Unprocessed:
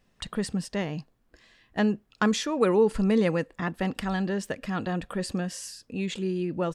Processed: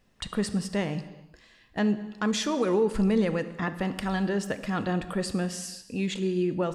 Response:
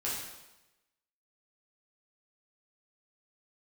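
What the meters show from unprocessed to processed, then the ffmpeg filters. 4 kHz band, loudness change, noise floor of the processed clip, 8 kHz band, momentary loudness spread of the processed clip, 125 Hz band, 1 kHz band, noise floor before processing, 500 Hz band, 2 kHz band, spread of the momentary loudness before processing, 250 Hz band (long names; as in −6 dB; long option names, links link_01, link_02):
+1.0 dB, −0.5 dB, −59 dBFS, +1.0 dB, 9 LU, +0.5 dB, −1.0 dB, −68 dBFS, −1.5 dB, −1.0 dB, 11 LU, 0.0 dB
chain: -filter_complex "[0:a]alimiter=limit=-17.5dB:level=0:latency=1:release=164,asplit=2[link_01][link_02];[1:a]atrim=start_sample=2205,afade=type=out:start_time=0.35:duration=0.01,atrim=end_sample=15876,asetrate=32193,aresample=44100[link_03];[link_02][link_03]afir=irnorm=-1:irlink=0,volume=-16dB[link_04];[link_01][link_04]amix=inputs=2:normalize=0"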